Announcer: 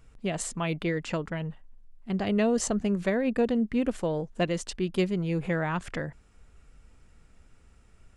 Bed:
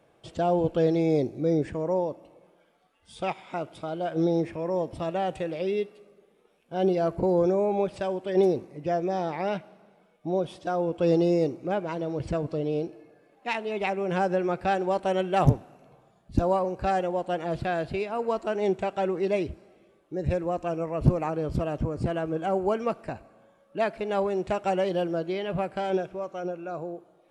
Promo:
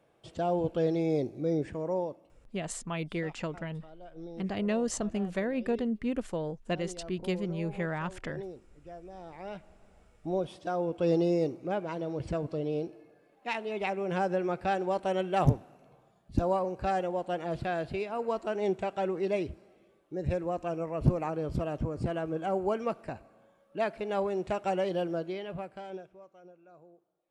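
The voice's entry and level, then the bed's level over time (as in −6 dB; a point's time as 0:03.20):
2.30 s, −5.0 dB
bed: 0:02.04 −5 dB
0:02.61 −19.5 dB
0:09.09 −19.5 dB
0:09.98 −4 dB
0:25.17 −4 dB
0:26.40 −21.5 dB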